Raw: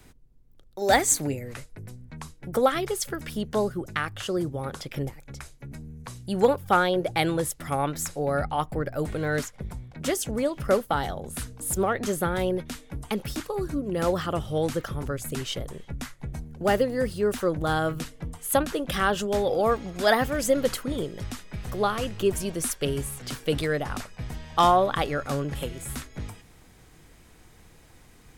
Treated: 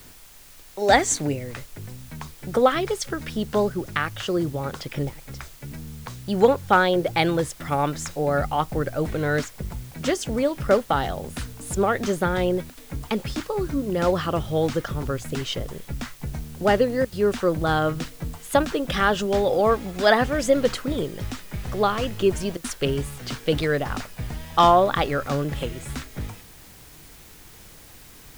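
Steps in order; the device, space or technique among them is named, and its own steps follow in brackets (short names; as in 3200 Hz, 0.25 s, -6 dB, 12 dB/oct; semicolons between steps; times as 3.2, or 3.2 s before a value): worn cassette (LPF 6300 Hz 12 dB/oct; wow and flutter; level dips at 12.7/17.05/22.57, 71 ms -17 dB; white noise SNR 25 dB); gain +3.5 dB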